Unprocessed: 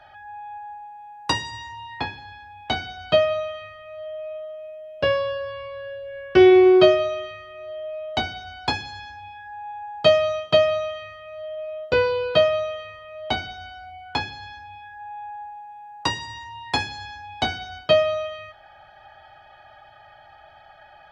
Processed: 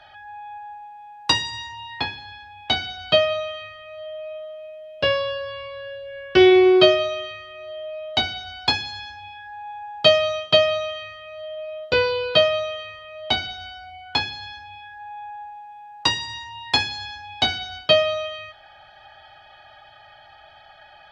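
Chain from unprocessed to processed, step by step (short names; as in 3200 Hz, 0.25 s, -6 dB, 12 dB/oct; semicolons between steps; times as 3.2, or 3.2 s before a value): bell 3800 Hz +9 dB 1.5 oct; gain -1 dB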